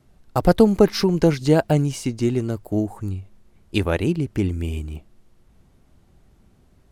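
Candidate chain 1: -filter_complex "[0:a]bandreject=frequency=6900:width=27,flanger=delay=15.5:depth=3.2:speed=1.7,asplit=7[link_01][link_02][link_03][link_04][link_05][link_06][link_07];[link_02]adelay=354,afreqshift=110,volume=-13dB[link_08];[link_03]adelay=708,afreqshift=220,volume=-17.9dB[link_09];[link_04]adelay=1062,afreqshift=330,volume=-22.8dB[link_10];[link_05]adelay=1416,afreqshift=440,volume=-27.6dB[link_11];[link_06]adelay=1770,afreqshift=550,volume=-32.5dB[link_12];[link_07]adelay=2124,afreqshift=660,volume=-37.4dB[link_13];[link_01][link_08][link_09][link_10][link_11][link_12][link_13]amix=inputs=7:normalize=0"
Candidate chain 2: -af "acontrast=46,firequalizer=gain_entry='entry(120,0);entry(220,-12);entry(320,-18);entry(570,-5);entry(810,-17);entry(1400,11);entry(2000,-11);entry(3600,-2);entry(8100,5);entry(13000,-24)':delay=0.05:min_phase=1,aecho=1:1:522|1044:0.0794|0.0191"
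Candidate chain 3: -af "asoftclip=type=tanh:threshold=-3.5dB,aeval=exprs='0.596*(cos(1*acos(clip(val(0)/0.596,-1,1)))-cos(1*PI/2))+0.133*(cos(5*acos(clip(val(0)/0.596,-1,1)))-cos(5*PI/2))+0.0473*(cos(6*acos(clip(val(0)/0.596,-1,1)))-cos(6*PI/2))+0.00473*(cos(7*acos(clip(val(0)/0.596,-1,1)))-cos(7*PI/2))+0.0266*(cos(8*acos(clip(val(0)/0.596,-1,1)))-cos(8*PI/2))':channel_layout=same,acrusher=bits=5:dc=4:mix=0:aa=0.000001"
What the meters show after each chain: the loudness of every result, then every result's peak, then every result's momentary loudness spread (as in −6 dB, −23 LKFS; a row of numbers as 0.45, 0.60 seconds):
−24.0, −22.0, −18.0 LKFS; −5.0, −4.5, −5.5 dBFS; 17, 8, 10 LU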